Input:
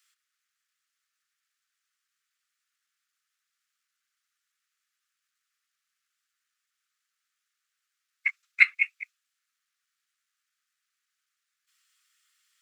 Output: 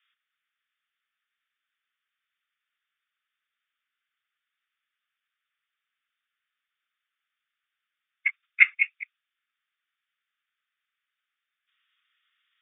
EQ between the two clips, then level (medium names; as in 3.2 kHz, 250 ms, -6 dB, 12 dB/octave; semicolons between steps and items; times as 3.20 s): high-pass 1.1 kHz; brick-wall FIR low-pass 3.7 kHz; +1.5 dB